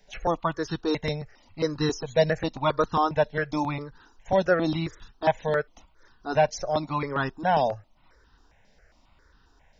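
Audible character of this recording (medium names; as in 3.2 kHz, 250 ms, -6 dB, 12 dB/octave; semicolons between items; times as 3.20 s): notches that jump at a steady rate 7.4 Hz 330–2200 Hz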